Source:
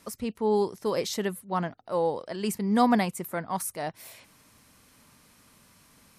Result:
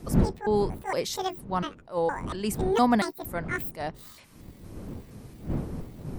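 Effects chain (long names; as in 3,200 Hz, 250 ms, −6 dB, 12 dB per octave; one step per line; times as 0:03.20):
pitch shifter gated in a rhythm +11 semitones, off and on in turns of 232 ms
wind on the microphone 220 Hz −34 dBFS
level that may rise only so fast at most 260 dB per second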